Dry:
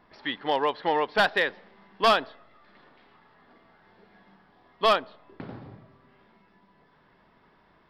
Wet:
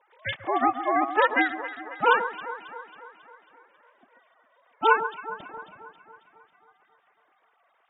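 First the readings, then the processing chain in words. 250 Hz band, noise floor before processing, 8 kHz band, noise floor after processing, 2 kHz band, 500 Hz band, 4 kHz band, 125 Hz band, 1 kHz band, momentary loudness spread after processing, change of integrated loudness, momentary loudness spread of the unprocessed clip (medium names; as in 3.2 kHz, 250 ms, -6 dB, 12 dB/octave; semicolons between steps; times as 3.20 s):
+3.5 dB, -62 dBFS, under -25 dB, -68 dBFS, +3.0 dB, -1.5 dB, -7.5 dB, no reading, +3.0 dB, 17 LU, 0.0 dB, 20 LU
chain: formants replaced by sine waves; echo whose repeats swap between lows and highs 136 ms, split 1.5 kHz, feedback 74%, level -10.5 dB; ring modulator 220 Hz; trim +4 dB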